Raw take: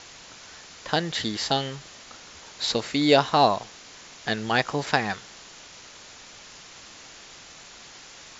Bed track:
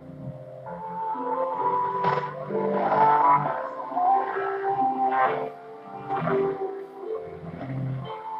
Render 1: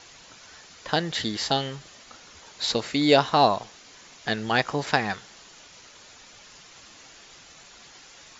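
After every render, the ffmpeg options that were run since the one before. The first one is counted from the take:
-af "afftdn=nr=6:nf=-47"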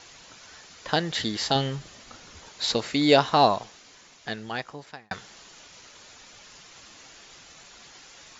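-filter_complex "[0:a]asettb=1/sr,asplit=3[a][b][c];[a]atrim=end=1.554[d];[b]atrim=start=1.55:end=2.49,asetpts=PTS-STARTPTS,afade=t=in:d=0.004:c=qsin,afade=t=out:st=0.936:d=0.004:c=qsin,lowshelf=f=290:g=7.5[e];[c]atrim=start=2.486[f];[d][e]acrossfade=d=0.004:c1=hsin:c2=qsin[g];[g][f]acrossfade=d=0.004:c1=qsin:c2=hsin,asplit=2[h][i];[h]atrim=end=5.11,asetpts=PTS-STARTPTS,afade=t=out:st=3.5:d=1.61[j];[i]atrim=start=5.11,asetpts=PTS-STARTPTS,afade=t=in:d=0.004:c=hsin[k];[j][k]concat=n=2:v=0:a=1"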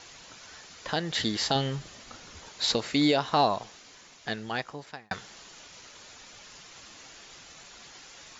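-af "alimiter=limit=-12dB:level=0:latency=1:release=265"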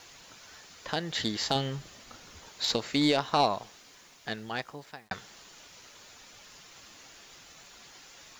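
-af "acrusher=bits=9:mix=0:aa=0.000001,aeval=exprs='0.251*(cos(1*acos(clip(val(0)/0.251,-1,1)))-cos(1*PI/2))+0.0251*(cos(3*acos(clip(val(0)/0.251,-1,1)))-cos(3*PI/2))':c=same"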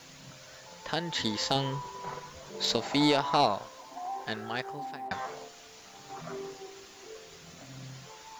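-filter_complex "[1:a]volume=-16dB[a];[0:a][a]amix=inputs=2:normalize=0"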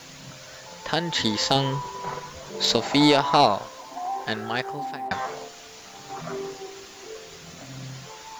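-af "volume=7dB"

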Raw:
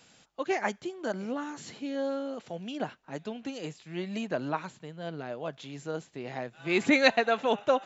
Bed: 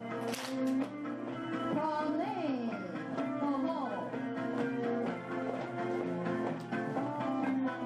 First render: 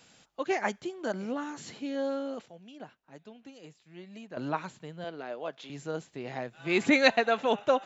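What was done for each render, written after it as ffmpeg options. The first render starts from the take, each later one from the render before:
-filter_complex "[0:a]asettb=1/sr,asplit=3[a][b][c];[a]atrim=end=5.044[d];[b]atrim=start=5.04:end=5.7,asetpts=PTS-STARTPTS,afade=t=in:d=0.004:c=qsin,afade=t=out:st=0.656:d=0.004:c=qsin,highpass=300,lowpass=6.2k[e];[c]atrim=start=5.696[f];[d][e]acrossfade=d=0.004:c1=hsin:c2=qsin[g];[g][f]acrossfade=d=0.004:c1=qsin:c2=hsin,asplit=3[h][i][j];[h]atrim=end=2.462[k];[i]atrim=start=2.458:end=4.372,asetpts=PTS-STARTPTS,volume=-12dB[l];[j]atrim=start=4.368[m];[k][l]acrossfade=d=0.004:c1=hsin:c2=hsin[n];[n][m]acrossfade=d=0.004:c1=hsin:c2=hsin"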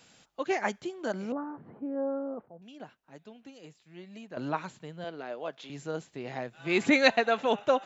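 -filter_complex "[0:a]asettb=1/sr,asplit=3[a][b][c];[a]atrim=end=1.324[d];[b]atrim=start=1.32:end=2.62,asetpts=PTS-STARTPTS,afade=t=in:d=0.004:c=qsin,afade=t=out:st=1.296:d=0.004:c=qsin,lowpass=f=1.2k:w=0.5412,lowpass=f=1.2k:w=1.3066[e];[c]atrim=start=2.616[f];[d][e]acrossfade=d=0.004:c1=hsin:c2=qsin[g];[g][f]acrossfade=d=0.004:c1=qsin:c2=hsin"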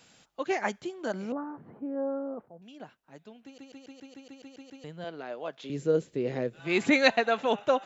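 -filter_complex "[0:a]asettb=1/sr,asplit=3[a][b][c];[a]atrim=end=5.644[d];[b]atrim=start=5.64:end=6.6,asetpts=PTS-STARTPTS,afade=t=in:d=0.004:c=qsin,afade=t=out:st=0.956:d=0.004:c=qsin,lowshelf=f=610:t=q:w=3:g=6.5[e];[c]atrim=start=6.596[f];[d][e]acrossfade=d=0.004:c1=hsin:c2=qsin[g];[g][f]acrossfade=d=0.004:c1=qsin:c2=hsin,asplit=11[h][i][j][k][l][m][n][o][p][q][r];[h]atrim=end=3.582[s];[i]atrim=start=3.438:end=3.582[t];[j]atrim=start=3.438:end=3.582[u];[k]atrim=start=3.438:end=3.582[v];[l]atrim=start=3.438:end=3.582[w];[m]atrim=start=3.438:end=3.582[x];[n]atrim=start=3.438:end=3.582[y];[o]atrim=start=3.438:end=3.582[z];[p]atrim=start=3.438:end=3.582[aa];[q]atrim=start=3.438:end=3.582[ab];[r]atrim=start=4.838[ac];[s][t]acrossfade=d=0.004:c1=hsin:c2=hsin[ad];[ad][u]acrossfade=d=0.004:c1=hsin:c2=hsin[ae];[ae][v]acrossfade=d=0.004:c1=hsin:c2=hsin[af];[af][w]acrossfade=d=0.004:c1=hsin:c2=hsin[ag];[ag][x]acrossfade=d=0.004:c1=hsin:c2=hsin[ah];[ah][y]acrossfade=d=0.004:c1=hsin:c2=hsin[ai];[ai][z]acrossfade=d=0.004:c1=hsin:c2=hsin[aj];[aj][aa]acrossfade=d=0.004:c1=hsin:c2=hsin[ak];[ak][ab]acrossfade=d=0.004:c1=hsin:c2=hsin[al];[al][ac]acrossfade=d=0.004:c1=hsin:c2=hsin"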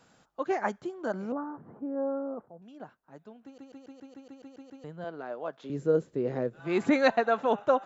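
-af "highshelf=f=1.8k:t=q:w=1.5:g=-7.5"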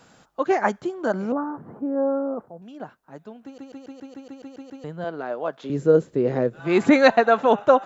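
-af "volume=8.5dB,alimiter=limit=-2dB:level=0:latency=1"

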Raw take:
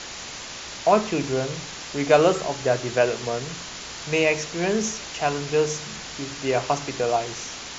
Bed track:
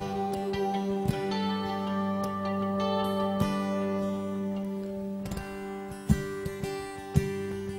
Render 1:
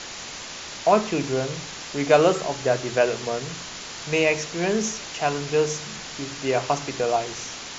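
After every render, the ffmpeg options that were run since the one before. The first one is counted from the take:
-af "bandreject=f=60:t=h:w=4,bandreject=f=120:t=h:w=4"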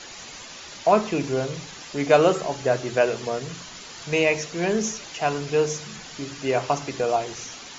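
-af "afftdn=nr=8:nf=-37"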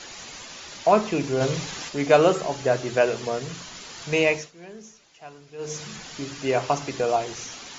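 -filter_complex "[0:a]asplit=3[a][b][c];[a]afade=t=out:st=1.4:d=0.02[d];[b]acontrast=40,afade=t=in:st=1.4:d=0.02,afade=t=out:st=1.88:d=0.02[e];[c]afade=t=in:st=1.88:d=0.02[f];[d][e][f]amix=inputs=3:normalize=0,asplit=3[g][h][i];[g]atrim=end=4.52,asetpts=PTS-STARTPTS,afade=t=out:st=4.29:d=0.23:silence=0.112202[j];[h]atrim=start=4.52:end=5.58,asetpts=PTS-STARTPTS,volume=-19dB[k];[i]atrim=start=5.58,asetpts=PTS-STARTPTS,afade=t=in:d=0.23:silence=0.112202[l];[j][k][l]concat=n=3:v=0:a=1"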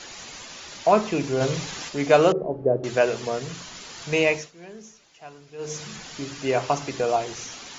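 -filter_complex "[0:a]asettb=1/sr,asplit=3[a][b][c];[a]atrim=end=2.324[d];[b]atrim=start=2.32:end=2.84,asetpts=PTS-STARTPTS,afade=t=in:d=0.004:c=qsin,afade=t=out:st=0.516:d=0.004:c=qsin,lowpass=f=450:t=q:w=1.7[e];[c]atrim=start=2.836[f];[d][e]acrossfade=d=0.004:c1=hsin:c2=qsin[g];[g][f]acrossfade=d=0.004:c1=qsin:c2=hsin"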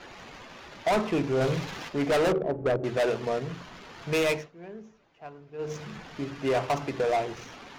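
-af "volume=21dB,asoftclip=hard,volume=-21dB,adynamicsmooth=sensitivity=4.5:basefreq=1.6k"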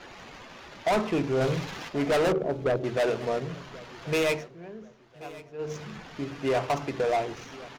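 -af "aecho=1:1:1082|2164:0.106|0.0318"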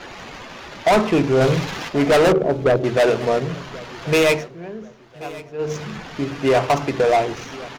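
-af "volume=9.5dB"

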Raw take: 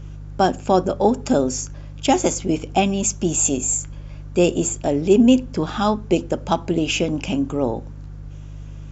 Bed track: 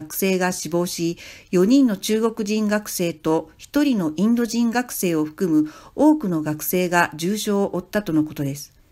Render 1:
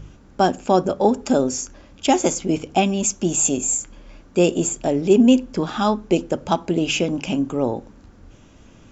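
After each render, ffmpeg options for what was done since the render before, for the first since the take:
-af "bandreject=f=50:t=h:w=4,bandreject=f=100:t=h:w=4,bandreject=f=150:t=h:w=4"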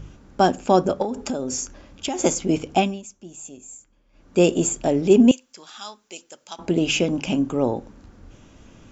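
-filter_complex "[0:a]asettb=1/sr,asplit=3[a][b][c];[a]atrim=end=1.024[d];[b]atrim=start=1.02:end=2.19,asetpts=PTS-STARTPTS,afade=t=in:d=0.004:c=qsin,afade=t=out:st=1.166:d=0.004:c=qsin,acompressor=threshold=-22dB:ratio=10:attack=3.2:release=140:knee=1:detection=peak[e];[c]atrim=start=2.186[f];[d][e]acrossfade=d=0.004:c1=hsin:c2=qsin[g];[g][f]acrossfade=d=0.004:c1=qsin:c2=hsin,asettb=1/sr,asplit=3[h][i][j];[h]atrim=end=5.314[k];[i]atrim=start=5.31:end=6.59,asetpts=PTS-STARTPTS,afade=t=in:d=0.004:c=qsin,afade=t=out:st=1.276:d=0.004:c=qsin,aderivative[l];[j]atrim=start=6.586[m];[k][l]acrossfade=d=0.004:c1=hsin:c2=qsin[n];[n][m]acrossfade=d=0.004:c1=qsin:c2=hsin,asplit=3[o][p][q];[o]atrim=end=3.02,asetpts=PTS-STARTPTS,afade=t=out:st=2.76:d=0.26:silence=0.1[r];[p]atrim=start=3.02:end=4.12,asetpts=PTS-STARTPTS,volume=-20dB[s];[q]atrim=start=4.12,asetpts=PTS-STARTPTS,afade=t=in:d=0.26:silence=0.1[t];[r][s][t]concat=n=3:v=0:a=1"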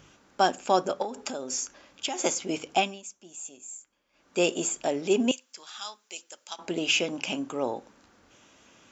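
-filter_complex "[0:a]highpass=f=1k:p=1,acrossover=split=6500[a][b];[b]acompressor=threshold=-37dB:ratio=4:attack=1:release=60[c];[a][c]amix=inputs=2:normalize=0"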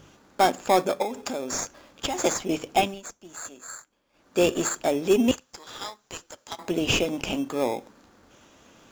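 -filter_complex "[0:a]asplit=2[a][b];[b]acrusher=samples=15:mix=1:aa=0.000001,volume=-3dB[c];[a][c]amix=inputs=2:normalize=0,asoftclip=type=tanh:threshold=-7.5dB"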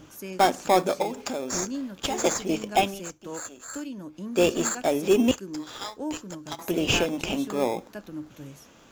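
-filter_complex "[1:a]volume=-17.5dB[a];[0:a][a]amix=inputs=2:normalize=0"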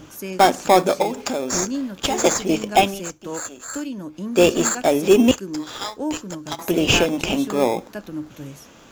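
-af "volume=6.5dB,alimiter=limit=-3dB:level=0:latency=1"

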